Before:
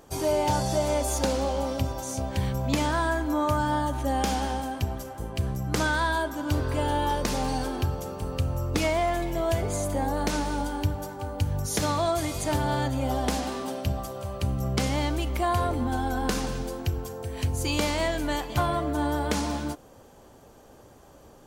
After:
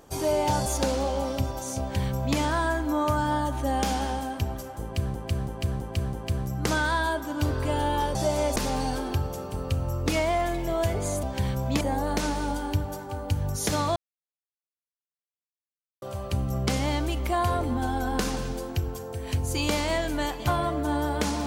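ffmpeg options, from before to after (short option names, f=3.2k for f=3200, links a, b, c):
-filter_complex "[0:a]asplit=12[a][b][c][d][e][f][g][h][i][j][k][l];[a]atrim=end=0.662[m];[b]atrim=start=1.068:end=5.562[n];[c]atrim=start=5.228:end=5.562[o];[d]atrim=start=5.228:end=5.562[p];[e]atrim=start=5.228:end=5.562[q];[f]atrim=start=5.228:end=7.242[r];[g]atrim=start=0.658:end=1.072[s];[h]atrim=start=7.238:end=9.912[t];[i]atrim=start=2.208:end=2.792[u];[j]atrim=start=9.908:end=12.06,asetpts=PTS-STARTPTS,afade=t=out:st=2.148:d=0.004:c=hsin[v];[k]atrim=start=12.06:end=14.12,asetpts=PTS-STARTPTS,volume=0[w];[l]atrim=start=14.12,asetpts=PTS-STARTPTS,afade=t=in:d=0.004:c=hsin[x];[m][n]acrossfade=d=0.004:c1=hsin:c2=hsin[y];[y][o]acrossfade=d=0.004:c1=hsin:c2=hsin[z];[z][p]acrossfade=d=0.004:c1=hsin:c2=hsin[aa];[aa][q]acrossfade=d=0.004:c1=hsin:c2=hsin[ab];[ab][r]acrossfade=d=0.004:c1=hsin:c2=hsin[ac];[ac][s]acrossfade=d=0.004:c1=hsin:c2=hsin[ad];[ad][t]acrossfade=d=0.004:c1=hsin:c2=hsin[ae];[ae][u]acrossfade=d=0.004:c1=hsin:c2=hsin[af];[v][w][x]concat=n=3:v=0:a=1[ag];[af][ag]acrossfade=d=0.004:c1=hsin:c2=hsin"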